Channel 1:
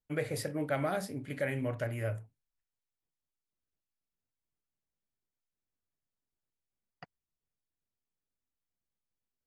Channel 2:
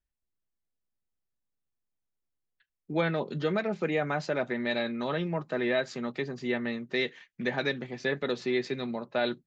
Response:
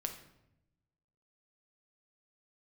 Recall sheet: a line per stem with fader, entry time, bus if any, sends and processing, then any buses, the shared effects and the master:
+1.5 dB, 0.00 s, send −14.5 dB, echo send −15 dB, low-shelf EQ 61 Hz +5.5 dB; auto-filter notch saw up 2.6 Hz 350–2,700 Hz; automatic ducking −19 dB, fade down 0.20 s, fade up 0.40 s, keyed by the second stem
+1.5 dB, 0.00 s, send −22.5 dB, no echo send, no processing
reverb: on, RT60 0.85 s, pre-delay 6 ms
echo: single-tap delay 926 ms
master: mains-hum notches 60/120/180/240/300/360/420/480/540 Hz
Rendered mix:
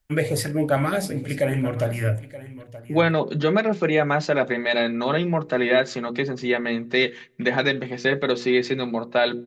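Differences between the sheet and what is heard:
stem 1 +1.5 dB → +11.0 dB
stem 2 +1.5 dB → +8.5 dB

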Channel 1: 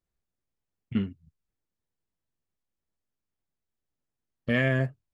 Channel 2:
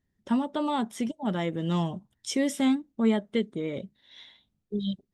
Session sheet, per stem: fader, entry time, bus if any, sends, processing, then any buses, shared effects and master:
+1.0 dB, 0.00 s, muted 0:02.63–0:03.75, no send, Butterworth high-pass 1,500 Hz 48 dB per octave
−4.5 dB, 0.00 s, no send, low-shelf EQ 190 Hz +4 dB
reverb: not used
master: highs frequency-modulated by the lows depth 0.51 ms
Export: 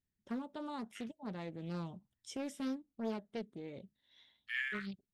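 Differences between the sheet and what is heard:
stem 1 +1.0 dB → −7.5 dB
stem 2 −4.5 dB → −15.5 dB

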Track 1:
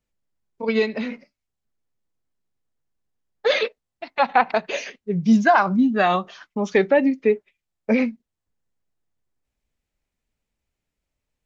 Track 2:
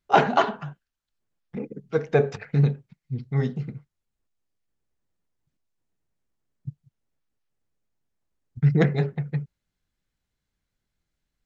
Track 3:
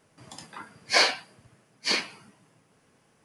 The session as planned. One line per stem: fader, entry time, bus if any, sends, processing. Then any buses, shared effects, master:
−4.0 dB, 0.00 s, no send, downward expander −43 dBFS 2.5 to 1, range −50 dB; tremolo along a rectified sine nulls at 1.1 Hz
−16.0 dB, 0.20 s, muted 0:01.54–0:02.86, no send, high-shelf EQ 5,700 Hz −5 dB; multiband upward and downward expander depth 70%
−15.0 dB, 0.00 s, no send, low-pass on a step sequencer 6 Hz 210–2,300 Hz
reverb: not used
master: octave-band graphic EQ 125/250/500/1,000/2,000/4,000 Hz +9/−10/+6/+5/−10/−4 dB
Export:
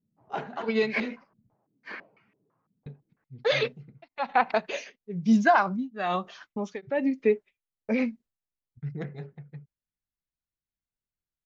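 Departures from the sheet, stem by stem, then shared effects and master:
stem 2: missing multiband upward and downward expander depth 70%
master: missing octave-band graphic EQ 125/250/500/1,000/2,000/4,000 Hz +9/−10/+6/+5/−10/−4 dB

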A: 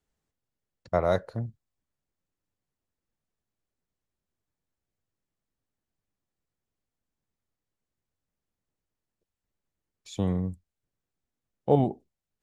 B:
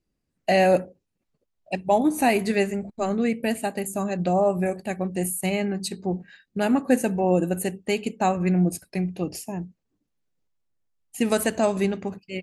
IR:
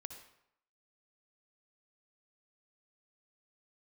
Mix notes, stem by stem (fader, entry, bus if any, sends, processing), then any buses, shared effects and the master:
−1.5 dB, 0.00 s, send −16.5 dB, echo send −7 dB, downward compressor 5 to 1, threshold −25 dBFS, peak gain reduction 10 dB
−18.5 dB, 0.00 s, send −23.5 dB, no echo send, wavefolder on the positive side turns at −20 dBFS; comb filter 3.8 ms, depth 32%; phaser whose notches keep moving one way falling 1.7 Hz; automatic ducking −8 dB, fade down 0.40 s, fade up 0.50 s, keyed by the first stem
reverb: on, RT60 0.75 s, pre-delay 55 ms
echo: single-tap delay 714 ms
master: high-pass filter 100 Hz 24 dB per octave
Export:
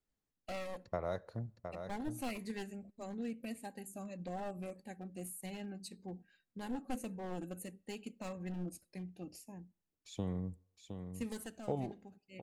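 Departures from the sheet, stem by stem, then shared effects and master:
stem A −1.5 dB → −9.0 dB
master: missing high-pass filter 100 Hz 24 dB per octave

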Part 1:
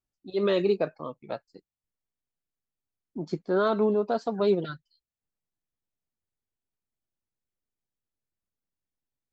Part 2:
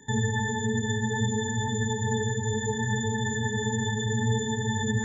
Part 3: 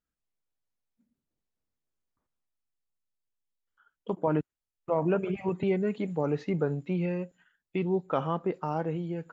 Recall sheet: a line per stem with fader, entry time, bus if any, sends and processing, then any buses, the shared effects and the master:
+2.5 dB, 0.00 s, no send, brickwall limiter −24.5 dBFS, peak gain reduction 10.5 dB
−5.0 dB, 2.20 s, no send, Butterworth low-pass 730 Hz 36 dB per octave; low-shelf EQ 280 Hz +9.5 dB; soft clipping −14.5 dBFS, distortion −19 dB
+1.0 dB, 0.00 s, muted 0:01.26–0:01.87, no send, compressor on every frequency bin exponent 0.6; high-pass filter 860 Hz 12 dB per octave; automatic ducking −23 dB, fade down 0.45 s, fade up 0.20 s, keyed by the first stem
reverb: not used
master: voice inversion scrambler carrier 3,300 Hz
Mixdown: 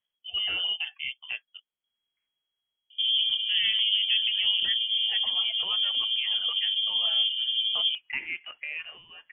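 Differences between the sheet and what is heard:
stem 2: entry 2.20 s → 2.90 s
stem 3: missing compressor on every frequency bin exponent 0.6

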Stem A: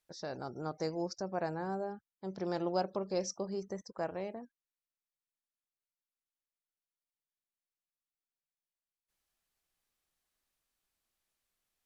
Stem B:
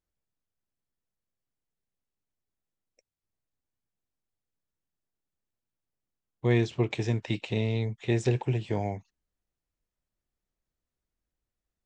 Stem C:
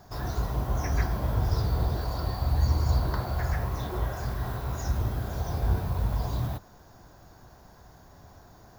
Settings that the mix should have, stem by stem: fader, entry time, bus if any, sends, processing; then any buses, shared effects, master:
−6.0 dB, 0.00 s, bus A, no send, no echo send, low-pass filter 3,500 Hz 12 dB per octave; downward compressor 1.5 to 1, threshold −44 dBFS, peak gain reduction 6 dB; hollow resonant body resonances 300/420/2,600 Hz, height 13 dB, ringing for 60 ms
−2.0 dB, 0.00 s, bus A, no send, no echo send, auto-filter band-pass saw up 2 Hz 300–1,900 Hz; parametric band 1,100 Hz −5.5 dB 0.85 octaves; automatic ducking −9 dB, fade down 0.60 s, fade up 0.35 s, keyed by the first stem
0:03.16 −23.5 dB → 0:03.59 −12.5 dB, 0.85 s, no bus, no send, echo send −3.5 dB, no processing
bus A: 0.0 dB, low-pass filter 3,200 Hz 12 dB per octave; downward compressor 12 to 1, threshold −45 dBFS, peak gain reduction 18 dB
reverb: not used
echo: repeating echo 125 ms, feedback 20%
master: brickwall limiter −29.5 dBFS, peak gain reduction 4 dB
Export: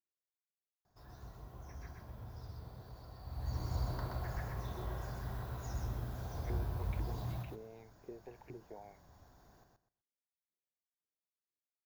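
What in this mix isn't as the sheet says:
stem A: muted
stem B −2.0 dB → −9.0 dB
master: missing brickwall limiter −29.5 dBFS, peak gain reduction 4 dB

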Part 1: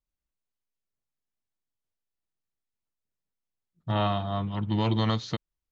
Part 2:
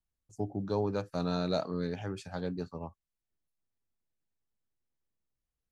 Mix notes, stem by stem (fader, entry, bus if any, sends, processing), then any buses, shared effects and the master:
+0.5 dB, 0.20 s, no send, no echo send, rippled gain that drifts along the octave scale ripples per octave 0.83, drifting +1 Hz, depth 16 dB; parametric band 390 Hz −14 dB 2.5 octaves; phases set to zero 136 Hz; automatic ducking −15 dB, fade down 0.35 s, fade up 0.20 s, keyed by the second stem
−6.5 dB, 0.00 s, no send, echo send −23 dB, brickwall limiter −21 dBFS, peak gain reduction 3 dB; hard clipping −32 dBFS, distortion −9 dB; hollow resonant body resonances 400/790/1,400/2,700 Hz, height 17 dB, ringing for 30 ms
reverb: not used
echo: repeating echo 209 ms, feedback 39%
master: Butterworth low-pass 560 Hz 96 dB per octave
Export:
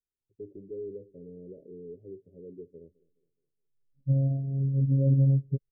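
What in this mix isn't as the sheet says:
stem 1 +0.5 dB → +10.5 dB
stem 2 −6.5 dB → −15.5 dB

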